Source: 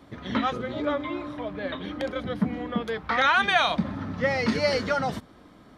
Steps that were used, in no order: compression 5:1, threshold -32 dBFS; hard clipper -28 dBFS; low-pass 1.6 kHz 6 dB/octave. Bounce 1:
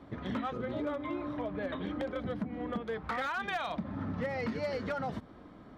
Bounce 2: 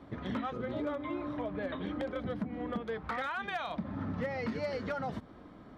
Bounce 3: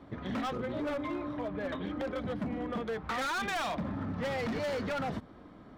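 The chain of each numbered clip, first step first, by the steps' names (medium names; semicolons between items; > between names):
low-pass > compression > hard clipper; compression > low-pass > hard clipper; low-pass > hard clipper > compression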